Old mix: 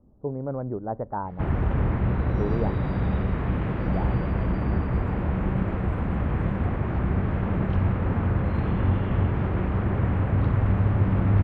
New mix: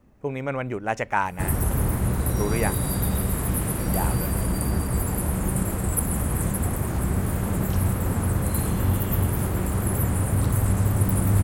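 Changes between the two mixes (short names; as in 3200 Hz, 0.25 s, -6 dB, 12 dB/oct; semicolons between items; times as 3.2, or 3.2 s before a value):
speech: remove Gaussian blur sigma 9.7 samples; master: remove LPF 2800 Hz 24 dB/oct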